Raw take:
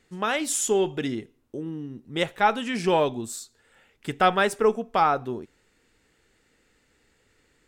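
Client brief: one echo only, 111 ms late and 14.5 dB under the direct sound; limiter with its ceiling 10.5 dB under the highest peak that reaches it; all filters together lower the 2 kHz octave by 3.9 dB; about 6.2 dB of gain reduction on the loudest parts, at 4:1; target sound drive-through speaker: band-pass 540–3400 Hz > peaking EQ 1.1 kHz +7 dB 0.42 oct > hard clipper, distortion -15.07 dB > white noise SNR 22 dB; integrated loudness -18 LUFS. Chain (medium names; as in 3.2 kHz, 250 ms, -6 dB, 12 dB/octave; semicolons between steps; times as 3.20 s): peaking EQ 2 kHz -6 dB; compression 4:1, threshold -23 dBFS; peak limiter -22.5 dBFS; band-pass 540–3400 Hz; peaking EQ 1.1 kHz +7 dB 0.42 oct; delay 111 ms -14.5 dB; hard clipper -26 dBFS; white noise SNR 22 dB; trim +19 dB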